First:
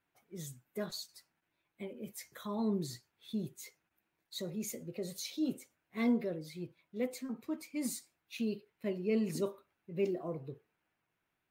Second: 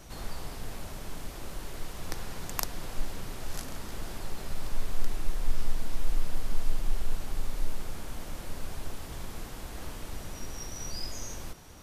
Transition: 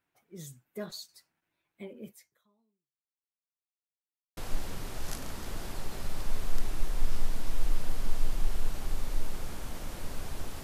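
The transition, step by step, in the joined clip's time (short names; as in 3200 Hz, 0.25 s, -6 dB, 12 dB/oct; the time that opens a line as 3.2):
first
2.06–3.4 fade out exponential
3.4–4.37 mute
4.37 switch to second from 2.83 s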